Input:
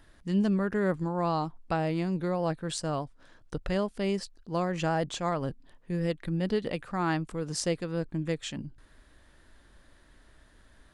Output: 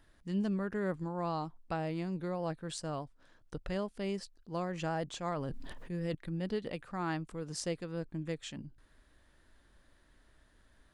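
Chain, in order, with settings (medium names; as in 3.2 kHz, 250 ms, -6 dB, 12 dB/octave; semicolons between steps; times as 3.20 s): 5.23–6.15 s: decay stretcher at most 22 dB/s; trim -7 dB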